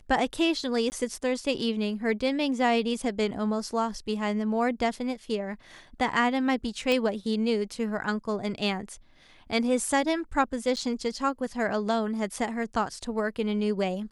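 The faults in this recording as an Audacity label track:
0.900000	0.920000	gap 19 ms
6.920000	6.920000	pop -14 dBFS
10.760000	10.770000	gap 8.3 ms

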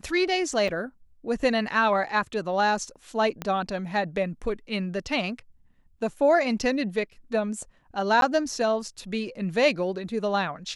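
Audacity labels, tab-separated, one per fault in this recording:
0.680000	0.680000	gap 4.5 ms
3.420000	3.420000	pop -16 dBFS
8.210000	8.220000	gap 12 ms

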